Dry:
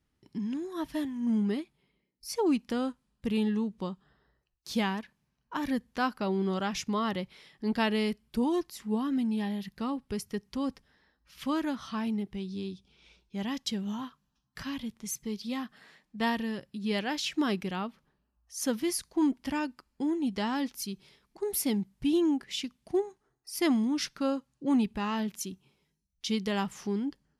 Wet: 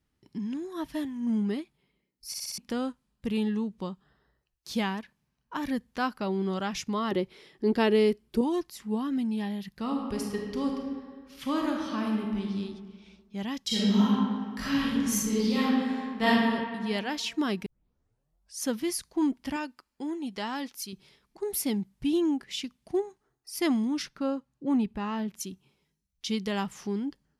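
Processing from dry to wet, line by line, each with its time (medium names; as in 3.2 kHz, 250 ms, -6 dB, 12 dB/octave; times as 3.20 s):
2.28 s: stutter in place 0.06 s, 5 plays
7.11–8.41 s: peaking EQ 380 Hz +13 dB
9.80–12.53 s: reverb throw, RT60 1.7 s, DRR 0 dB
13.67–16.27 s: reverb throw, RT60 1.9 s, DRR -10 dB
17.66 s: tape start 0.94 s
19.56–20.93 s: bass shelf 230 Hz -11.5 dB
24.02–25.40 s: treble shelf 2.5 kHz -8.5 dB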